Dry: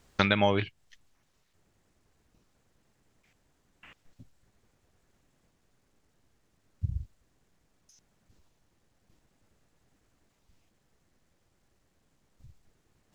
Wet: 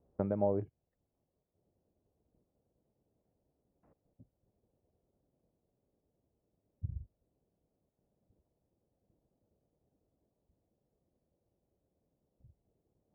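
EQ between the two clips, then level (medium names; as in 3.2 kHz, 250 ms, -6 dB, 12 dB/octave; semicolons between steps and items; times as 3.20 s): high-pass 45 Hz; four-pole ladder low-pass 730 Hz, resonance 35%; 0.0 dB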